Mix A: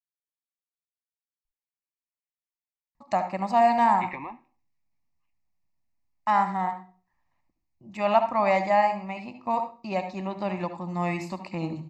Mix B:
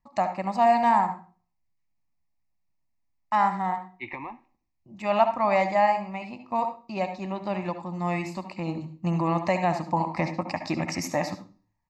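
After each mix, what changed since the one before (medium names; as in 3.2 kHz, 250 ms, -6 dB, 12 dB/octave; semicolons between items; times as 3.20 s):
first voice: entry -2.95 s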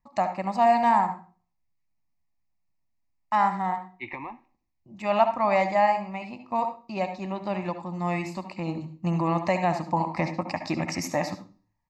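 no change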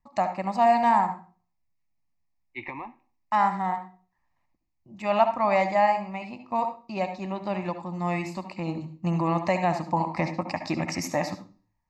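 second voice: entry -1.45 s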